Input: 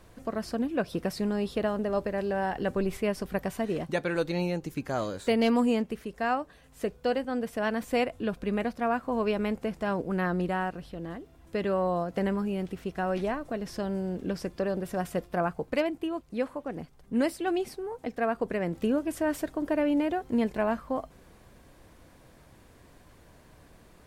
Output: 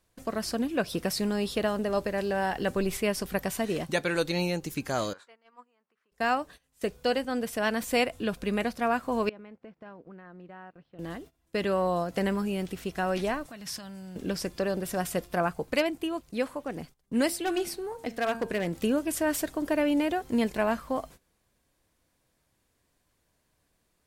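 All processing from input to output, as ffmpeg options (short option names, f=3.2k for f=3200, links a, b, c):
-filter_complex "[0:a]asettb=1/sr,asplit=3[a][b][c];[a]atrim=end=5.134[d];[b]atrim=start=5.13:end=6.12,asetpts=PTS-STARTPTS,afade=t=in:d=0.004:c=qsin,afade=t=out:st=0.986:d=0.004:c=qsin,acompressor=threshold=-34dB:ratio=5:attack=3.2:release=140:knee=1:detection=peak,bandpass=f=1.2k:t=q:w=2.2[e];[c]atrim=start=6.116[f];[d][e]acrossfade=d=0.004:c1=hsin:c2=qsin[g];[g][f]acrossfade=d=0.004:c1=qsin:c2=hsin,asettb=1/sr,asplit=3[h][i][j];[h]atrim=end=9.294[k];[i]atrim=start=9.29:end=10.99,asetpts=PTS-STARTPTS,afade=t=in:d=0.004:c=qsin,afade=t=out:st=1.696:d=0.004:c=qsin,acompressor=threshold=-42dB:ratio=16:attack=3.2:release=140:knee=1:detection=peak,highpass=110,lowpass=2.1k[l];[j]atrim=start=10.986[m];[k][l]acrossfade=d=0.004:c1=hsin:c2=qsin[n];[n][m]acrossfade=d=0.004:c1=qsin:c2=hsin,asettb=1/sr,asplit=3[o][p][q];[o]atrim=end=13.464[r];[p]atrim=start=13.46:end=14.16,asetpts=PTS-STARTPTS,afade=t=in:d=0.004:c=qsin,afade=t=out:st=0.696:d=0.004:c=qsin,highpass=98,acompressor=threshold=-34dB:ratio=10:attack=3.2:release=140:knee=1:detection=peak,equalizer=f=420:w=1.1:g=-13.5[s];[q]atrim=start=14.156[t];[r][s]acrossfade=d=0.004:c1=hsin:c2=qsin[u];[u][t]acrossfade=d=0.004:c1=qsin:c2=hsin,asettb=1/sr,asplit=3[v][w][x];[v]atrim=end=17.274[y];[w]atrim=start=17.27:end=18.67,asetpts=PTS-STARTPTS,afade=t=in:d=0.004:c=qsin,afade=t=out:st=1.396:d=0.004:c=qsin,bandreject=f=114.3:t=h:w=4,bandreject=f=228.6:t=h:w=4,bandreject=f=342.9:t=h:w=4,bandreject=f=457.2:t=h:w=4,bandreject=f=571.5:t=h:w=4,bandreject=f=685.8:t=h:w=4,bandreject=f=800.1:t=h:w=4,bandreject=f=914.4:t=h:w=4,bandreject=f=1.0287k:t=h:w=4,bandreject=f=1.143k:t=h:w=4,bandreject=f=1.2573k:t=h:w=4,bandreject=f=1.3716k:t=h:w=4,bandreject=f=1.4859k:t=h:w=4,bandreject=f=1.6002k:t=h:w=4,bandreject=f=1.7145k:t=h:w=4,bandreject=f=1.8288k:t=h:w=4,bandreject=f=1.9431k:t=h:w=4,bandreject=f=2.0574k:t=h:w=4,bandreject=f=2.1717k:t=h:w=4,bandreject=f=2.286k:t=h:w=4,bandreject=f=2.4003k:t=h:w=4,bandreject=f=2.5146k:t=h:w=4,bandreject=f=2.6289k:t=h:w=4,bandreject=f=2.7432k:t=h:w=4,bandreject=f=2.8575k:t=h:w=4,bandreject=f=2.9718k:t=h:w=4,bandreject=f=3.0861k:t=h:w=4,bandreject=f=3.2004k:t=h:w=4,bandreject=f=3.3147k:t=h:w=4,bandreject=f=3.429k:t=h:w=4,bandreject=f=3.5433k:t=h:w=4,bandreject=f=3.6576k:t=h:w=4,bandreject=f=3.7719k:t=h:w=4,bandreject=f=3.8862k:t=h:w=4,bandreject=f=4.0005k:t=h:w=4,bandreject=f=4.1148k:t=h:w=4,bandreject=f=4.2291k:t=h:w=4,bandreject=f=4.3434k:t=h:w=4,bandreject=f=4.4577k:t=h:w=4,asoftclip=type=hard:threshold=-22.5dB[z];[x]atrim=start=18.666[aa];[y][z]acrossfade=d=0.004:c1=hsin:c2=qsin[ab];[ab][aa]acrossfade=d=0.004:c1=qsin:c2=hsin,agate=range=-20dB:threshold=-47dB:ratio=16:detection=peak,highshelf=f=2.6k:g=11"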